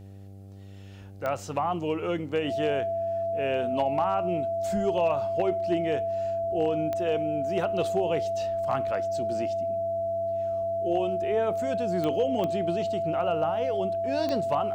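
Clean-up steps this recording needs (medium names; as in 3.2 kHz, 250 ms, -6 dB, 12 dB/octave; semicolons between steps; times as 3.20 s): clip repair -17 dBFS; de-click; de-hum 98 Hz, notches 8; band-stop 670 Hz, Q 30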